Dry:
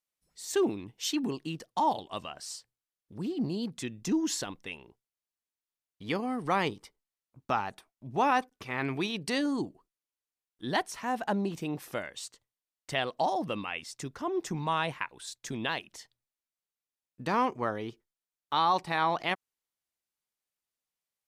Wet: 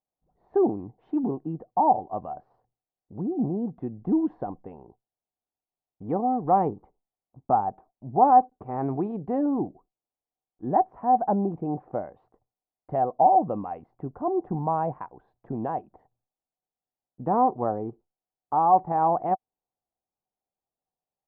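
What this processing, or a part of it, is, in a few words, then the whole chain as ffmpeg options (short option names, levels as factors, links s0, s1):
under water: -af "lowpass=f=910:w=0.5412,lowpass=f=910:w=1.3066,equalizer=f=750:t=o:w=0.22:g=10.5,volume=1.78"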